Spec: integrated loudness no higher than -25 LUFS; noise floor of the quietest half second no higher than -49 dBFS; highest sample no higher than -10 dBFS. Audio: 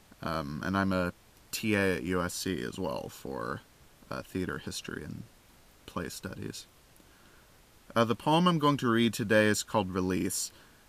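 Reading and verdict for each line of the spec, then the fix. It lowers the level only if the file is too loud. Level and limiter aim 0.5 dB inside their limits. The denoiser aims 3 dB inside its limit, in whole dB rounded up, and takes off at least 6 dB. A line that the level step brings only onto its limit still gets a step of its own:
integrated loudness -30.5 LUFS: pass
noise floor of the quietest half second -59 dBFS: pass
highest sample -11.0 dBFS: pass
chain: none needed

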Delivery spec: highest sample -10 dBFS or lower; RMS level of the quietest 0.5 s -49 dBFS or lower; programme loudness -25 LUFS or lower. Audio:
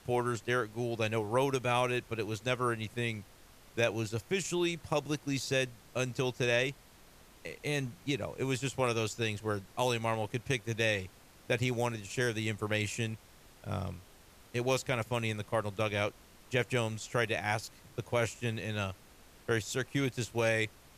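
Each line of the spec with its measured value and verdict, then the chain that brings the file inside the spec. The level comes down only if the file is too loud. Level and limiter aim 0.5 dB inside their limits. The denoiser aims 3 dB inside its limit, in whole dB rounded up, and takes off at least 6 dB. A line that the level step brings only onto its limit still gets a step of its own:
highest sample -14.0 dBFS: pass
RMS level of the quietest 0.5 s -58 dBFS: pass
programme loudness -33.5 LUFS: pass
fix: none needed

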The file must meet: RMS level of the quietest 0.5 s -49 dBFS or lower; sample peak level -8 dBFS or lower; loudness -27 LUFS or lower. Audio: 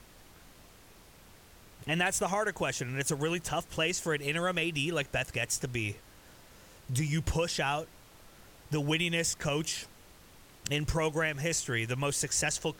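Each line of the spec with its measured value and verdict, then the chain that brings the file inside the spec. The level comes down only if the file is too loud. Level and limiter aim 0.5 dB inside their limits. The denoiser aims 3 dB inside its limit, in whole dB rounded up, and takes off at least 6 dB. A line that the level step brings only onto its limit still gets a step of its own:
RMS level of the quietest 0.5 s -56 dBFS: pass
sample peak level -15.0 dBFS: pass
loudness -31.0 LUFS: pass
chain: none needed

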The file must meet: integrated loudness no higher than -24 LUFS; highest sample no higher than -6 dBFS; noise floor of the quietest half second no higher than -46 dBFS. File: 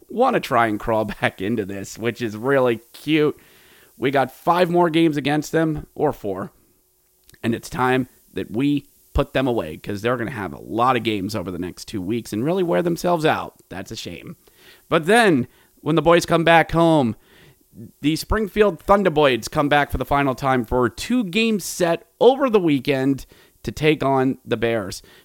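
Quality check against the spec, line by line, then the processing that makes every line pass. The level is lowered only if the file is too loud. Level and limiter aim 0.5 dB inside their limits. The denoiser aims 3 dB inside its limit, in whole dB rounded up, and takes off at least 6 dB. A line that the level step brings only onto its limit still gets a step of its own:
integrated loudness -20.0 LUFS: fail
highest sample -2.0 dBFS: fail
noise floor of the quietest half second -61 dBFS: pass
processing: trim -4.5 dB

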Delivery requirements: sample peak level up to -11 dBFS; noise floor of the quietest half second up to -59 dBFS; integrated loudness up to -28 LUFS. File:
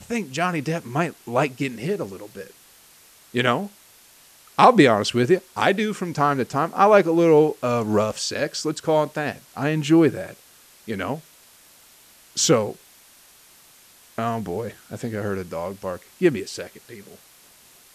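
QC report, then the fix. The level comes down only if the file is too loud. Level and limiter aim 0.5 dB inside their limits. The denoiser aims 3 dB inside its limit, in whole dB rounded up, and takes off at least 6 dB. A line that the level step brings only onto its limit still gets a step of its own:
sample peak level -2.5 dBFS: fail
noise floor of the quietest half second -52 dBFS: fail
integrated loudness -21.5 LUFS: fail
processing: noise reduction 6 dB, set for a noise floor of -52 dBFS; trim -7 dB; peak limiter -11.5 dBFS

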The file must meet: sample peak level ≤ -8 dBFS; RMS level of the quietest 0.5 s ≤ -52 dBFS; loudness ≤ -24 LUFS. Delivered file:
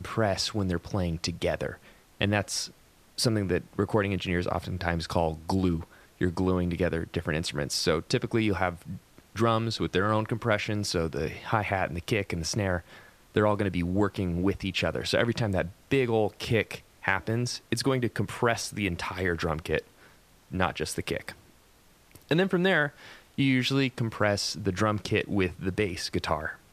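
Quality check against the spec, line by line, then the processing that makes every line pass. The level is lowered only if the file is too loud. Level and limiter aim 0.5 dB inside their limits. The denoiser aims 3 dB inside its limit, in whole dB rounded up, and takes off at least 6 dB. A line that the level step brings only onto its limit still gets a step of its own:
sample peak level -6.5 dBFS: fail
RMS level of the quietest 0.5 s -59 dBFS: pass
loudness -28.5 LUFS: pass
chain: peak limiter -8.5 dBFS

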